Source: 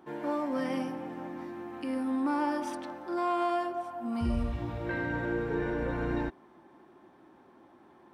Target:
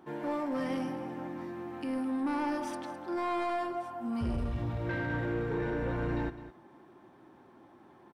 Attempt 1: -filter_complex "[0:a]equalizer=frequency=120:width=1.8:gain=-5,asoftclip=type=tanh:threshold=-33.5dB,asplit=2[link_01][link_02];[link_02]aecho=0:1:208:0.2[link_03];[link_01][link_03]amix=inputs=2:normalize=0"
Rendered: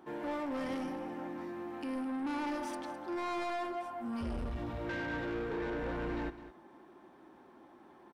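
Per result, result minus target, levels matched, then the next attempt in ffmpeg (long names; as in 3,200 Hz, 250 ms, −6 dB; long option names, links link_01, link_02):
125 Hz band −5.5 dB; soft clipping: distortion +5 dB
-filter_complex "[0:a]equalizer=frequency=120:width=1.8:gain=6,asoftclip=type=tanh:threshold=-33.5dB,asplit=2[link_01][link_02];[link_02]aecho=0:1:208:0.2[link_03];[link_01][link_03]amix=inputs=2:normalize=0"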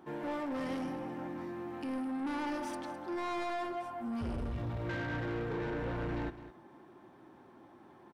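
soft clipping: distortion +6 dB
-filter_complex "[0:a]equalizer=frequency=120:width=1.8:gain=6,asoftclip=type=tanh:threshold=-26.5dB,asplit=2[link_01][link_02];[link_02]aecho=0:1:208:0.2[link_03];[link_01][link_03]amix=inputs=2:normalize=0"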